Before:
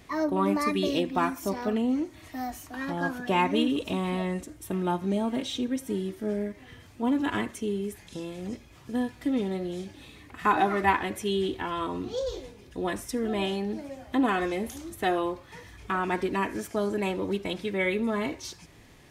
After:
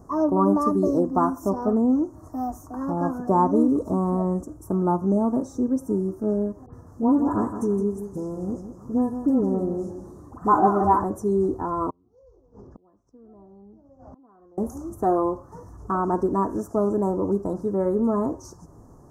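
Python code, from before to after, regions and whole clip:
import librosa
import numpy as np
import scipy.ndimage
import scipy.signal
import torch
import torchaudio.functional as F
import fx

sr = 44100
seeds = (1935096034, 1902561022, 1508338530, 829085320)

y = fx.chain(x, sr, fx.dispersion(late='highs', ms=67.0, hz=1300.0),
    fx.echo_feedback(ms=166, feedback_pct=35, wet_db=-9.5), at=(6.66, 11.04))
y = fx.chain(y, sr, fx.lowpass(hz=5600.0, slope=24),
    fx.gate_flip(shuts_db=-34.0, range_db=-35),
    fx.band_squash(depth_pct=100), at=(11.9, 14.58))
y = scipy.signal.sosfilt(scipy.signal.cheby1(3, 1.0, [1200.0, 6100.0], 'bandstop', fs=sr, output='sos'), y)
y = fx.high_shelf(y, sr, hz=3400.0, db=-12.0)
y = y * 10.0 ** (6.5 / 20.0)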